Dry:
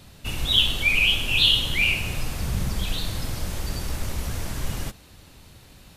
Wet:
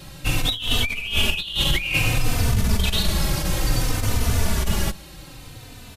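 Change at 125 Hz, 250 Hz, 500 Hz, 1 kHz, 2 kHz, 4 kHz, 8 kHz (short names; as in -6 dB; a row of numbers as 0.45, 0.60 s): +6.5, +7.0, +7.0, +7.0, -1.5, -2.0, +6.5 dB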